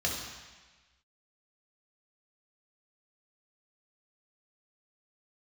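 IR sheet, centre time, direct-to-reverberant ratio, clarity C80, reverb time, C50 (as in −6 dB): 59 ms, −2.0 dB, 5.0 dB, 1.3 s, 2.5 dB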